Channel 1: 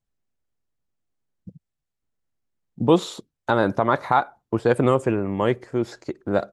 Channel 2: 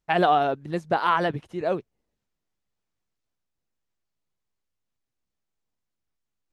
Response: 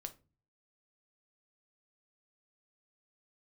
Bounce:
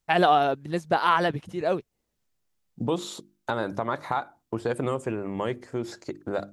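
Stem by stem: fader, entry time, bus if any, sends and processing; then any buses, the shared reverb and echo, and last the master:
-3.0 dB, 0.00 s, no send, hum notches 50/100/150/200/250/300/350 Hz; compression 2:1, threshold -25 dBFS, peak gain reduction 8 dB
0.0 dB, 0.00 s, no send, none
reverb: none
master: treble shelf 4.2 kHz +7 dB

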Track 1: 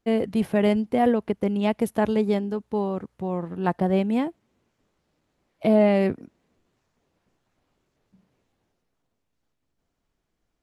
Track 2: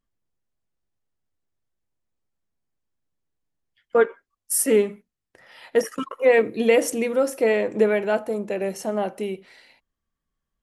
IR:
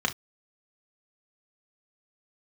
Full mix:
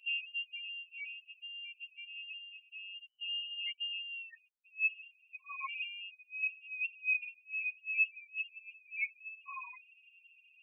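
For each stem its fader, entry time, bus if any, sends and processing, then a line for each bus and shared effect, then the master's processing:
-6.0 dB, 0.00 s, no send, auto duck -14 dB, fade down 0.65 s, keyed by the second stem
+1.0 dB, 0.00 s, muted 2.69–4.15 s, send -21 dB, spectral levelling over time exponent 0.6; compressor with a negative ratio -24 dBFS, ratio -0.5; inverted gate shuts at -14 dBFS, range -27 dB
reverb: on, pre-delay 3 ms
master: loudest bins only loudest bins 2; comb of notches 540 Hz; frequency inversion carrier 3 kHz

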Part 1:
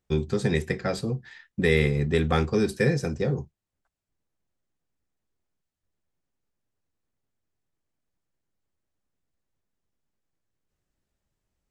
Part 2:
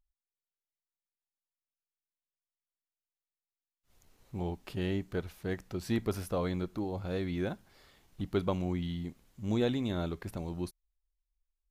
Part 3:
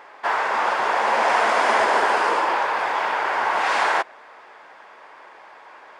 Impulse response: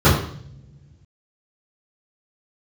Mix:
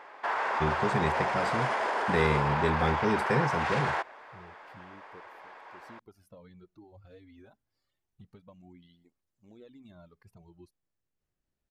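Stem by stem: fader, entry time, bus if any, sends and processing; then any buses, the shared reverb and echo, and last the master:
-5.0 dB, 0.50 s, no send, none
-11.0 dB, 0.00 s, no send, reverb removal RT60 1.9 s; compression 12:1, threshold -35 dBFS, peak gain reduction 11.5 dB; cancelling through-zero flanger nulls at 0.27 Hz, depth 6 ms
-4.0 dB, 0.00 s, no send, peak limiter -17 dBFS, peak gain reduction 9.5 dB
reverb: none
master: treble shelf 4.8 kHz -6 dB

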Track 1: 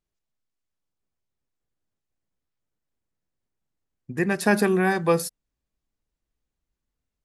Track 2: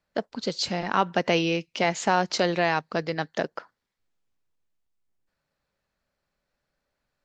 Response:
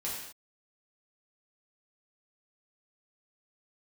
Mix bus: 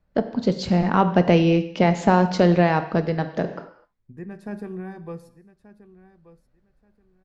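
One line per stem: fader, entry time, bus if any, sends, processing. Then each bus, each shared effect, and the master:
-20.0 dB, 0.00 s, send -14 dB, echo send -15.5 dB, none
+1.0 dB, 0.00 s, send -10.5 dB, no echo send, auto duck -9 dB, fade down 1.25 s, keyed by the first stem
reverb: on, pre-delay 3 ms
echo: feedback delay 1181 ms, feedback 21%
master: tilt EQ -3.5 dB/octave

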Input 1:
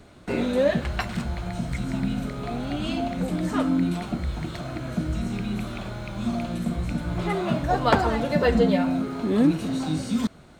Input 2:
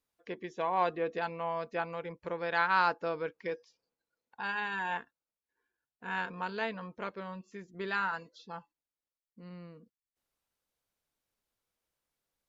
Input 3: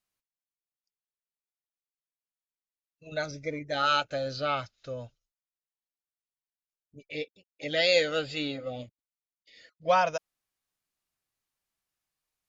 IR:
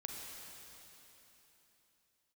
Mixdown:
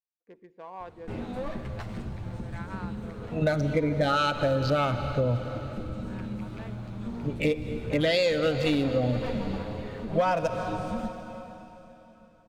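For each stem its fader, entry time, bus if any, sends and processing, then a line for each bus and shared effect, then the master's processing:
-11.0 dB, 0.80 s, bus A, send -7 dB, comb filter that takes the minimum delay 9.4 ms; bass shelf 210 Hz +11.5 dB
-11.5 dB, 0.00 s, bus A, send -13.5 dB, local Wiener filter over 15 samples; expander -55 dBFS
-6.0 dB, 0.30 s, no bus, send -6.5 dB, local Wiener filter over 9 samples; level rider gain up to 15 dB; bass shelf 460 Hz +11 dB
bus A: 0.0 dB, treble shelf 4.2 kHz -10 dB; compression, threshold -35 dBFS, peak gain reduction 12 dB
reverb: on, RT60 3.6 s, pre-delay 34 ms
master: saturation -5 dBFS, distortion -22 dB; compression 12:1, threshold -21 dBFS, peak gain reduction 11.5 dB

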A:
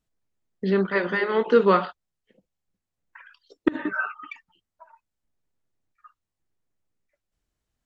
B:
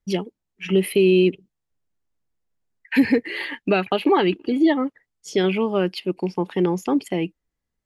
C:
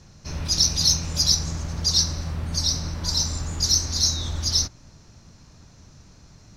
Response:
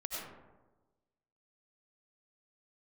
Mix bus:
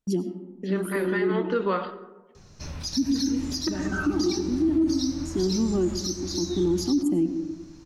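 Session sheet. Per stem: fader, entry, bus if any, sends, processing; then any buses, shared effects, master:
-1.0 dB, 0.00 s, send -15 dB, none
-1.5 dB, 0.00 s, send -8.5 dB, FFT filter 120 Hz 0 dB, 320 Hz +12 dB, 450 Hz -13 dB, 1 kHz -8 dB, 2.4 kHz -21 dB, 7.4 kHz +8 dB, 11 kHz +4 dB; gate with hold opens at -35 dBFS; auto duck -14 dB, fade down 0.25 s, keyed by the first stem
+2.5 dB, 2.35 s, no send, compression 3:1, threshold -31 dBFS, peak gain reduction 12.5 dB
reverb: on, RT60 1.2 s, pre-delay 55 ms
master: flange 0.89 Hz, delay 2 ms, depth 2 ms, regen +75%; peak limiter -16 dBFS, peak gain reduction 10.5 dB

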